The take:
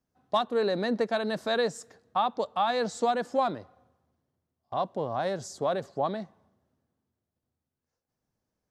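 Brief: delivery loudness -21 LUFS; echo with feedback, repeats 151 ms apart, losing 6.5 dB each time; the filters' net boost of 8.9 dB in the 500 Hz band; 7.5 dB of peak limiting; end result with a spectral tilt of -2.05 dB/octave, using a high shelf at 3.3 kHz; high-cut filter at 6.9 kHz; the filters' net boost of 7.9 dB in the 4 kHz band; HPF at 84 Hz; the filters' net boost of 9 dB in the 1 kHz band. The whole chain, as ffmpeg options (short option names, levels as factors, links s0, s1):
-af "highpass=84,lowpass=6900,equalizer=f=500:t=o:g=8,equalizer=f=1000:t=o:g=8,highshelf=f=3300:g=8,equalizer=f=4000:t=o:g=3.5,alimiter=limit=0.237:level=0:latency=1,aecho=1:1:151|302|453|604|755|906:0.473|0.222|0.105|0.0491|0.0231|0.0109,volume=1.19"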